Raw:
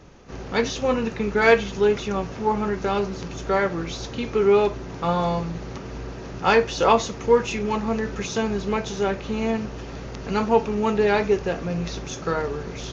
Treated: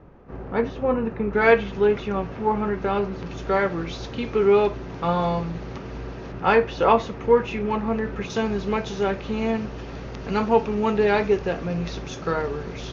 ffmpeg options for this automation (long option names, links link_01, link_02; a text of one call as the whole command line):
ffmpeg -i in.wav -af "asetnsamples=nb_out_samples=441:pad=0,asendcmd='1.33 lowpass f 2700;3.26 lowpass f 4200;6.32 lowpass f 2600;8.3 lowpass f 4700',lowpass=1400" out.wav